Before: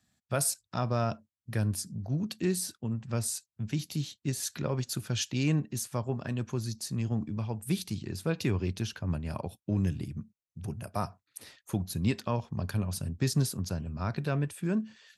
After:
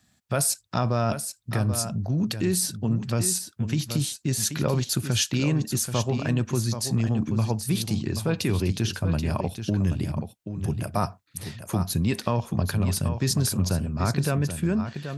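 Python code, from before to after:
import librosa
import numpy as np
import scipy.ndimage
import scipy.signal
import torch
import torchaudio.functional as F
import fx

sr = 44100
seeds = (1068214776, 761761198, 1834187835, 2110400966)

p1 = fx.over_compress(x, sr, threshold_db=-31.0, ratio=-0.5)
p2 = x + (p1 * librosa.db_to_amplitude(0.0))
p3 = p2 + 10.0 ** (-9.0 / 20.0) * np.pad(p2, (int(781 * sr / 1000.0), 0))[:len(p2)]
y = p3 * librosa.db_to_amplitude(1.5)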